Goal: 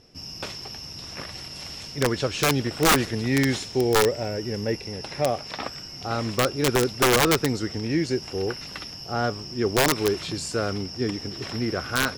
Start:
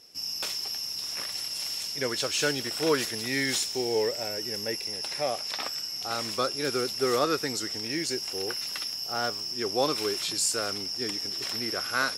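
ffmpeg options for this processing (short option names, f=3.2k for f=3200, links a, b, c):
-af "aemphasis=mode=reproduction:type=riaa,aeval=exprs='(mod(6.68*val(0)+1,2)-1)/6.68':c=same,volume=4dB"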